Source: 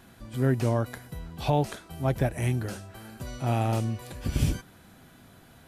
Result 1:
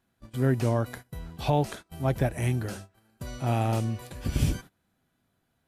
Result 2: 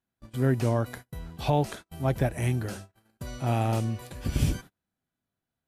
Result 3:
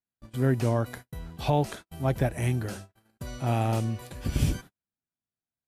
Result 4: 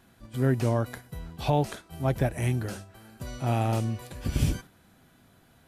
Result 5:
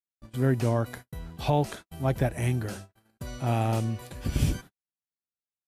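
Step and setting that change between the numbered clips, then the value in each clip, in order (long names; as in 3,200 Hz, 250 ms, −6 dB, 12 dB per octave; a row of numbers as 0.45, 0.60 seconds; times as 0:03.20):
noise gate, range: −21, −34, −46, −6, −59 decibels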